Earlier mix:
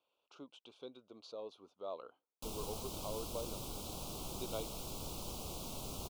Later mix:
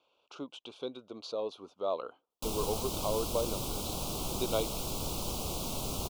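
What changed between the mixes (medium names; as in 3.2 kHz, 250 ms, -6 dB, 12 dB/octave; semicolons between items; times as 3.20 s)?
speech +11.0 dB; background +8.5 dB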